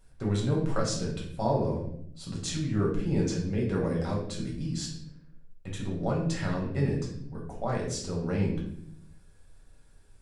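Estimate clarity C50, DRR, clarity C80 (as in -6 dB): 4.5 dB, -3.0 dB, 8.5 dB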